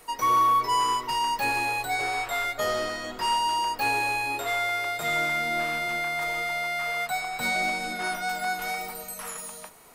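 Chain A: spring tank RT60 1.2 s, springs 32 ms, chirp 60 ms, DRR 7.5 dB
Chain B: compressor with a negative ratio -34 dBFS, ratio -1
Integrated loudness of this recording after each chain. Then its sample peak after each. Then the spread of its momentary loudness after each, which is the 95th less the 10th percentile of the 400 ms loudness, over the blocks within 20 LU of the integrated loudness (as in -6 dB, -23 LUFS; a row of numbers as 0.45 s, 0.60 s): -26.0 LUFS, -32.0 LUFS; -13.5 dBFS, -17.5 dBFS; 6 LU, 6 LU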